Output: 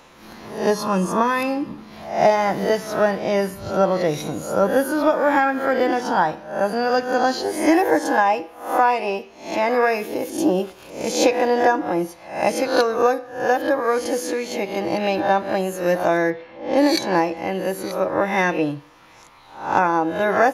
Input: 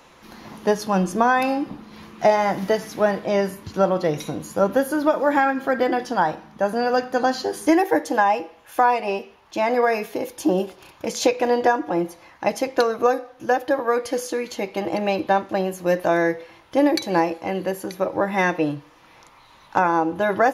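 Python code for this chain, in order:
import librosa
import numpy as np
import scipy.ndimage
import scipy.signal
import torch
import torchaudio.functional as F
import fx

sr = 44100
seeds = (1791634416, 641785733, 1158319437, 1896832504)

y = fx.spec_swells(x, sr, rise_s=0.51)
y = fx.notch_comb(y, sr, f0_hz=750.0, at=(0.7, 1.78))
y = fx.env_lowpass(y, sr, base_hz=2500.0, full_db=-13.0, at=(16.3, 17.37))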